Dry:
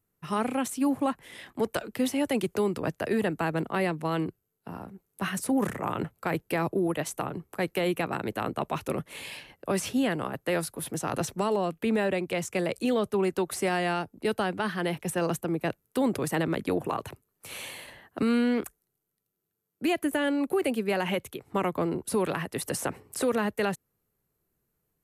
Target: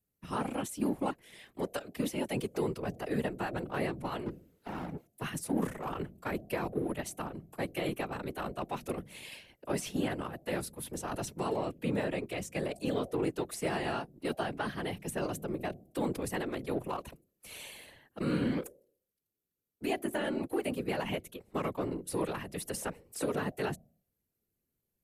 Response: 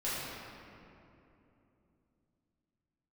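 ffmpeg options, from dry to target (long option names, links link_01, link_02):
-filter_complex "[0:a]acrossover=split=190|1400|3200[link_01][link_02][link_03][link_04];[link_02]adynamicsmooth=sensitivity=4.5:basefreq=1000[link_05];[link_01][link_05][link_03][link_04]amix=inputs=4:normalize=0,asettb=1/sr,asplit=3[link_06][link_07][link_08];[link_06]atrim=end=4.264[link_09];[link_07]atrim=start=4.26:end=5.07,asetpts=PTS-STARTPTS,afade=type=in:duration=0.004:curve=qsin,afade=type=out:start_time=0.806:duration=0.004:curve=qsin,asplit=2[link_10][link_11];[link_11]highpass=frequency=720:poles=1,volume=32dB,asoftclip=type=tanh:threshold=-24.5dB[link_12];[link_10][link_12]amix=inputs=2:normalize=0,lowpass=frequency=1500:poles=1,volume=-6dB[link_13];[link_08]atrim=start=5.066[link_14];[link_09][link_13]acrossfade=duration=0.004:curve1=hsin:curve2=qsin[link_15];[link_15][link_14]acrossfade=duration=0.004:curve1=qsin:curve2=hsin,bandreject=frequency=162:width_type=h:width=4,bandreject=frequency=324:width_type=h:width=4,bandreject=frequency=486:width_type=h:width=4,bandreject=frequency=648:width_type=h:width=4,afftfilt=real='hypot(re,im)*cos(2*PI*random(0))':imag='hypot(re,im)*sin(2*PI*random(1))':win_size=512:overlap=0.75"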